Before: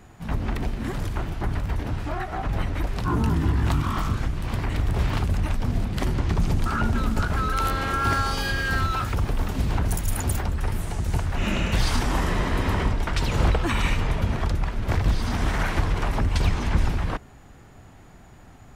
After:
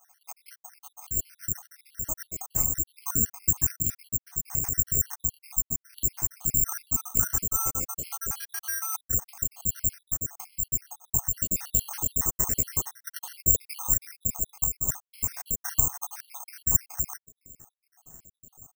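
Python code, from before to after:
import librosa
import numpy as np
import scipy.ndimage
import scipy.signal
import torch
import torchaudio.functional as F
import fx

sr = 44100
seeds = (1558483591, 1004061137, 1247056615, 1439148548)

y = fx.spec_dropout(x, sr, seeds[0], share_pct=75)
y = fx.high_shelf(y, sr, hz=3700.0, db=-10.0)
y = (np.kron(scipy.signal.resample_poly(y, 1, 6), np.eye(6)[0]) * 6)[:len(y)]
y = F.gain(torch.from_numpy(y), -8.0).numpy()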